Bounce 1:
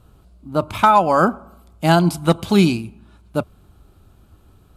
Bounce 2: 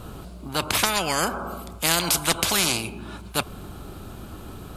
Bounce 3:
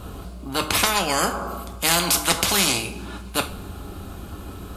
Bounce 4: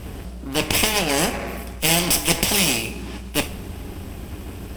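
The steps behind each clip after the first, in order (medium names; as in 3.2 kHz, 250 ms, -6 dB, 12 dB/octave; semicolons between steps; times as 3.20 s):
spectrum-flattening compressor 4:1
two-slope reverb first 0.34 s, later 1.8 s, from -21 dB, DRR 5 dB; trim +1 dB
comb filter that takes the minimum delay 0.36 ms; trim +2.5 dB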